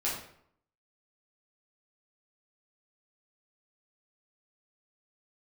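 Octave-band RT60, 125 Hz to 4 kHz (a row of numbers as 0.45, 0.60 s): 0.75, 0.70, 0.65, 0.65, 0.55, 0.45 s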